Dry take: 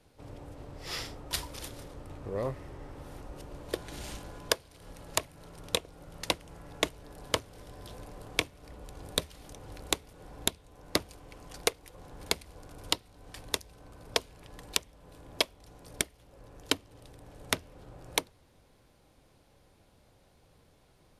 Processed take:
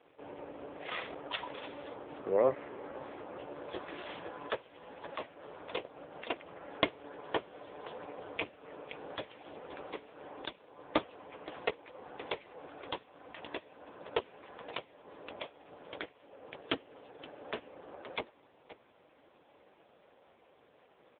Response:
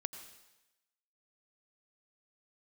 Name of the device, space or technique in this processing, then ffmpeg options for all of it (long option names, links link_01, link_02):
satellite phone: -af "highpass=350,lowpass=3300,aecho=1:1:522:0.106,volume=8.5dB" -ar 8000 -c:a libopencore_amrnb -b:a 4750